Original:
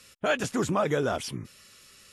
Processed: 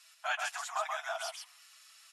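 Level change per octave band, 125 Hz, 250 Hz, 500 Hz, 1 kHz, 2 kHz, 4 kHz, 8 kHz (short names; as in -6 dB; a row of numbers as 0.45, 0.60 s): under -40 dB, under -40 dB, -15.0 dB, -4.0 dB, -3.5 dB, -4.0 dB, -4.0 dB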